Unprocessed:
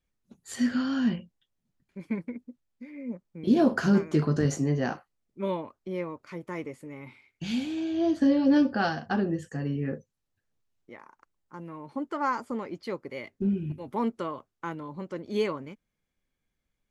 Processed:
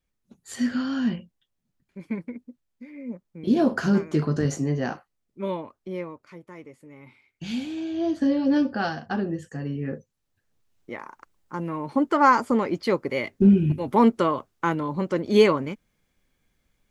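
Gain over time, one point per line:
5.95 s +1 dB
6.55 s -8 dB
7.49 s 0 dB
9.78 s 0 dB
10.94 s +11 dB

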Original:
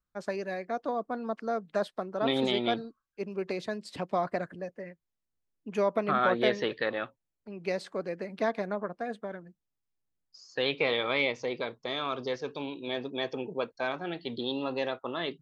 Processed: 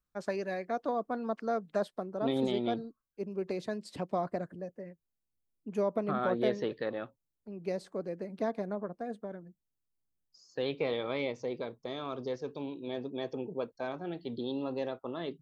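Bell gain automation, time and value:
bell 2400 Hz 2.9 oct
1.55 s -2 dB
2.16 s -12 dB
3.27 s -12 dB
3.8 s -4.5 dB
4.39 s -12 dB

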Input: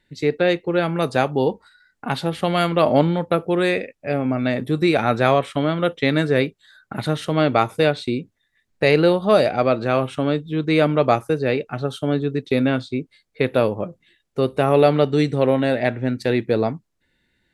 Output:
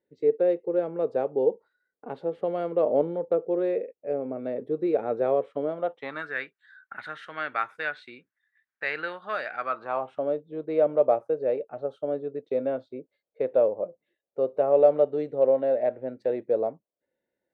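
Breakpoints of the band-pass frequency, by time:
band-pass, Q 3.8
5.64 s 470 Hz
6.34 s 1600 Hz
9.57 s 1600 Hz
10.26 s 560 Hz

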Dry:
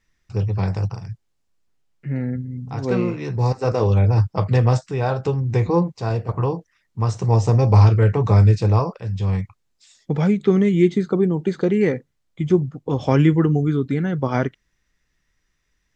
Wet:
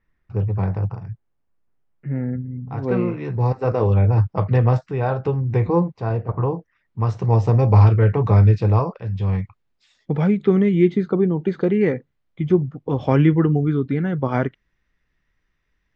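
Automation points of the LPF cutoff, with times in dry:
2.18 s 1700 Hz
3.2 s 2400 Hz
5.82 s 2400 Hz
6.45 s 1600 Hz
7.07 s 3000 Hz

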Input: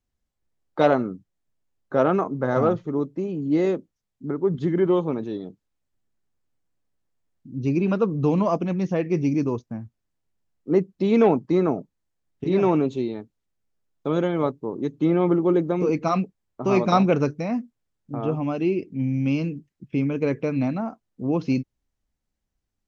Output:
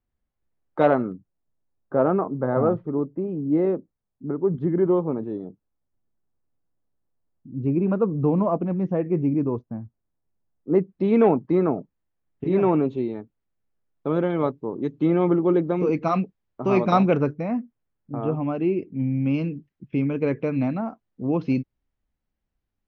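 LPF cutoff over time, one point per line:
2300 Hz
from 1.12 s 1200 Hz
from 10.75 s 2200 Hz
from 14.3 s 3500 Hz
from 17.17 s 2100 Hz
from 19.34 s 3100 Hz

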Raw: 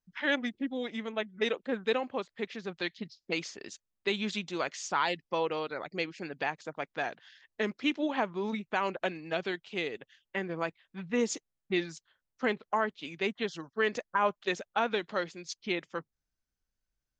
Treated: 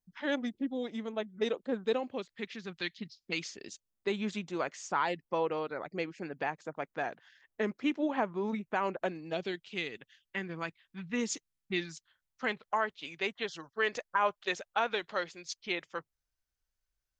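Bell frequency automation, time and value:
bell -9 dB 1.6 oct
1.92 s 2200 Hz
2.36 s 610 Hz
3.38 s 610 Hz
4.17 s 3900 Hz
8.95 s 3900 Hz
9.82 s 570 Hz
11.8 s 570 Hz
12.98 s 220 Hz

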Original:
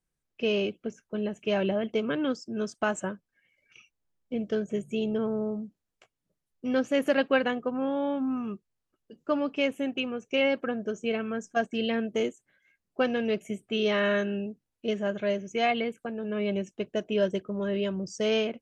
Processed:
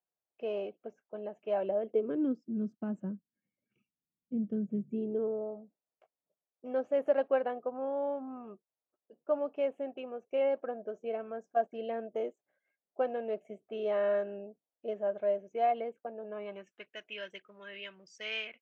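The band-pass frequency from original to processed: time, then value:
band-pass, Q 2.4
1.58 s 710 Hz
2.58 s 210 Hz
4.81 s 210 Hz
5.48 s 650 Hz
16.24 s 650 Hz
16.94 s 2200 Hz

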